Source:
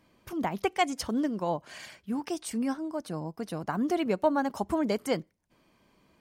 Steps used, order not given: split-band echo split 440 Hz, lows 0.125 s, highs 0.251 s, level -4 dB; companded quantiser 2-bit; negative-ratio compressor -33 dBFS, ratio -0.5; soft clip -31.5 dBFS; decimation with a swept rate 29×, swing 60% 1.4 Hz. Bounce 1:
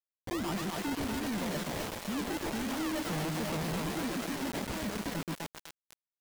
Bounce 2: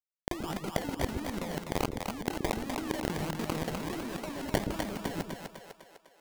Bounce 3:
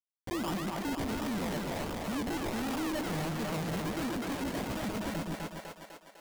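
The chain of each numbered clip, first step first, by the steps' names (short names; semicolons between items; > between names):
decimation with a swept rate > negative-ratio compressor > split-band echo > companded quantiser > soft clip; soft clip > companded quantiser > negative-ratio compressor > decimation with a swept rate > split-band echo; decimation with a swept rate > negative-ratio compressor > companded quantiser > split-band echo > soft clip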